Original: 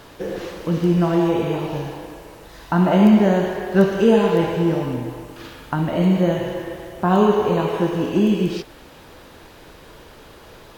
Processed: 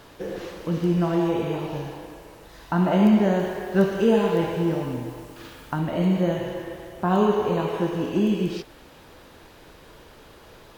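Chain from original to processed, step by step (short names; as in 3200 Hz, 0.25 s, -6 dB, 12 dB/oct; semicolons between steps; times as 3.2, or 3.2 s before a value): 3.39–5.79 requantised 8-bit, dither none; gain -4.5 dB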